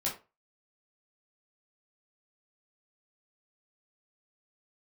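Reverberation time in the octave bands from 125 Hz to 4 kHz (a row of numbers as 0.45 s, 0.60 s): 0.30 s, 0.25 s, 0.30 s, 0.30 s, 0.25 s, 0.20 s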